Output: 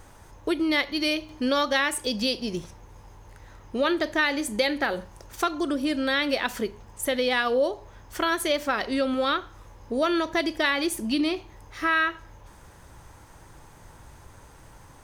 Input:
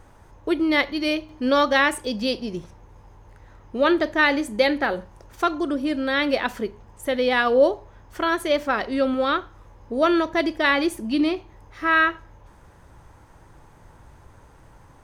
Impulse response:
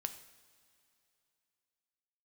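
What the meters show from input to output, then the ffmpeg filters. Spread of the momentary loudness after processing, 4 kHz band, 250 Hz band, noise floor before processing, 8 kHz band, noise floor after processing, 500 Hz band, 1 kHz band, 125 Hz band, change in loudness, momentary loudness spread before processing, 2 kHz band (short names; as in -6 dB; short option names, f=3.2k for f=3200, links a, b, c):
10 LU, +0.5 dB, -3.5 dB, -51 dBFS, +5.5 dB, -50 dBFS, -4.5 dB, -4.5 dB, -1.5 dB, -3.5 dB, 12 LU, -3.5 dB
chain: -af "highshelf=f=2.9k:g=9.5,acompressor=threshold=-23dB:ratio=2.5"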